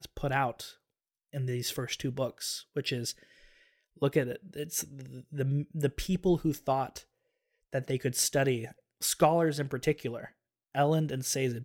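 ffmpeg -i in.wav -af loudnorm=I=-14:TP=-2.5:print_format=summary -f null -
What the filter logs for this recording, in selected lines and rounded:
Input Integrated:    -30.8 LUFS
Input True Peak:     -10.9 dBTP
Input LRA:             4.4 LU
Input Threshold:     -41.5 LUFS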